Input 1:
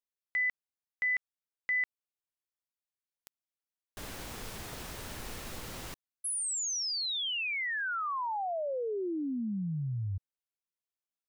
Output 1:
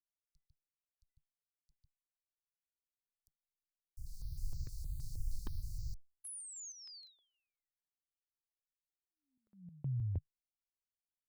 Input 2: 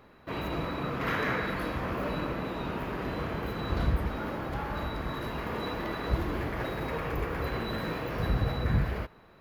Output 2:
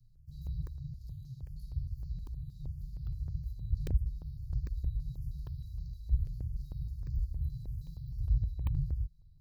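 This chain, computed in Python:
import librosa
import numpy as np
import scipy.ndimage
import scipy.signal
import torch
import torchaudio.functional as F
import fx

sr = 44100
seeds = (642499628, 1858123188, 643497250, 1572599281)

y = np.minimum(x, 2.0 * 10.0 ** (-19.5 / 20.0) - x)
y = fx.high_shelf(y, sr, hz=6600.0, db=-7.0)
y = fx.rider(y, sr, range_db=4, speed_s=0.5)
y = scipy.signal.sosfilt(scipy.signal.cheby1(5, 1.0, [150.0, 4400.0], 'bandstop', fs=sr, output='sos'), y)
y = fx.tone_stack(y, sr, knobs='10-0-1')
y = fx.buffer_crackle(y, sr, first_s=0.67, period_s=0.8, block=64, kind='zero')
y = fx.phaser_held(y, sr, hz=6.4, low_hz=260.0, high_hz=3100.0)
y = F.gain(torch.from_numpy(y), 11.5).numpy()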